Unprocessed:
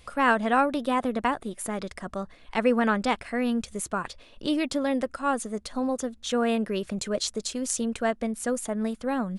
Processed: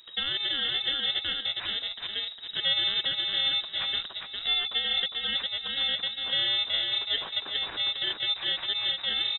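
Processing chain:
samples in bit-reversed order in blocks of 32 samples
reversed playback
upward compression, threshold −29 dBFS
reversed playback
hum removal 53.53 Hz, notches 6
on a send: repeating echo 406 ms, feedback 22%, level −5 dB
on the sum: brickwall limiter −16 dBFS, peak gain reduction 7.5 dB
voice inversion scrambler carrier 3,800 Hz

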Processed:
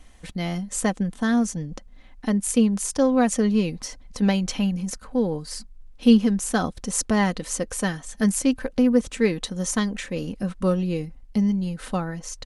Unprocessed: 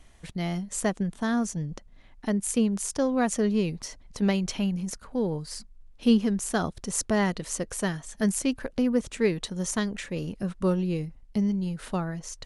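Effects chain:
comb filter 3.9 ms, depth 42%
level +3 dB

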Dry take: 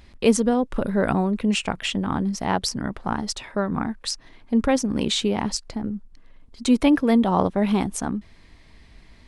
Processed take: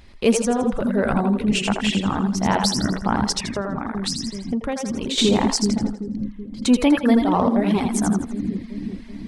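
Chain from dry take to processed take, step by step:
echo with a time of its own for lows and highs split 350 Hz, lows 380 ms, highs 82 ms, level −3 dB
in parallel at −8 dB: soft clipping −17 dBFS, distortion −11 dB
0:03.41–0:05.18: on the sum: downward compressor 6 to 1, threshold −24 dBFS, peak gain reduction 11 dB
on a send at −18 dB: convolution reverb RT60 0.45 s, pre-delay 5 ms
on the sum: speech leveller within 3 dB 2 s
reverb reduction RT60 0.64 s

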